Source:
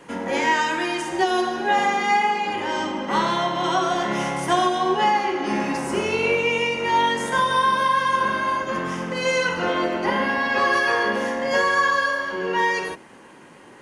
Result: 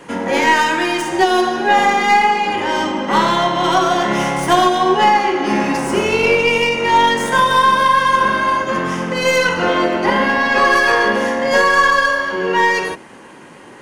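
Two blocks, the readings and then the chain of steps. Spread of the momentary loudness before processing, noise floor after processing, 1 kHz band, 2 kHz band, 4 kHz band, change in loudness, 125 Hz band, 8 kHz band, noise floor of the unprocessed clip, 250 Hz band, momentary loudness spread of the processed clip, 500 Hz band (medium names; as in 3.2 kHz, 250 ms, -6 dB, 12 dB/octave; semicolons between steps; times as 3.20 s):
6 LU, -39 dBFS, +7.0 dB, +7.0 dB, +7.0 dB, +7.0 dB, +7.0 dB, +7.0 dB, -46 dBFS, +7.0 dB, 6 LU, +7.0 dB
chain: tracing distortion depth 0.028 ms; trim +7 dB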